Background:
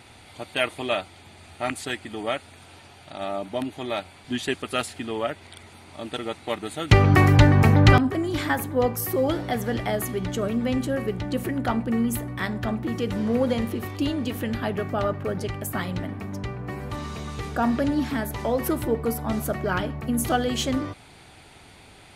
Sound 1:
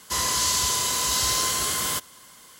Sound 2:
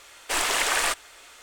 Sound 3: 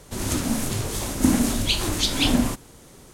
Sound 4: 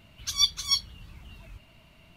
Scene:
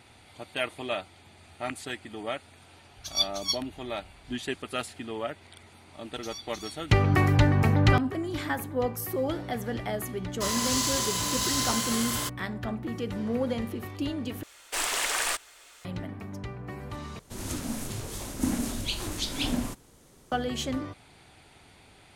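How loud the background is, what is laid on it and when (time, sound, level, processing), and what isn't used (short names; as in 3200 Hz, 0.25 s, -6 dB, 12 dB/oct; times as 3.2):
background -6 dB
2.77 add 4 -6 dB + three-band expander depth 40%
5.96 add 4 -6.5 dB + compressor, threshold -33 dBFS
10.3 add 1 -4 dB + backlash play -28.5 dBFS
14.43 replace with 2 -6 dB + high shelf 4300 Hz +4.5 dB
17.19 replace with 3 -9 dB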